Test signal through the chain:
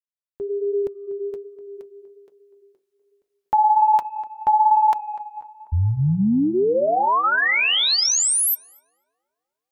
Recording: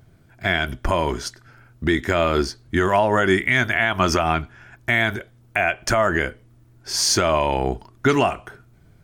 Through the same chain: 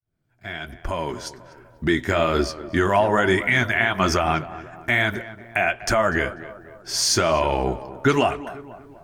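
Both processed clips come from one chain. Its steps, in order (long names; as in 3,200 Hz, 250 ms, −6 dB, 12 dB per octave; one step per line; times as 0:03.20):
fade in at the beginning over 1.81 s
tape delay 245 ms, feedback 57%, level −13 dB, low-pass 1,500 Hz
flanger 1.2 Hz, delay 1.5 ms, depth 8.5 ms, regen −45%
level +3 dB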